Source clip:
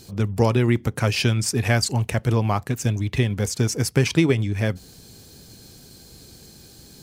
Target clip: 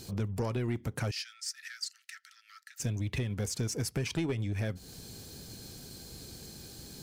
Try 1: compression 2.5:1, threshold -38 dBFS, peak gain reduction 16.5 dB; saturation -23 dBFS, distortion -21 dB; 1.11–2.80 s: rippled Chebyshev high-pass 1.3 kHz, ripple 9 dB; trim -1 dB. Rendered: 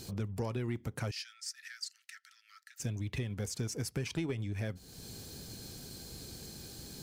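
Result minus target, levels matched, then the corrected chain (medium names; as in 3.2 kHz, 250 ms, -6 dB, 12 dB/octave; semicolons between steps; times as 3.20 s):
compression: peak gain reduction +4.5 dB
compression 2.5:1, threshold -30.5 dBFS, peak gain reduction 12 dB; saturation -23 dBFS, distortion -15 dB; 1.11–2.80 s: rippled Chebyshev high-pass 1.3 kHz, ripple 9 dB; trim -1 dB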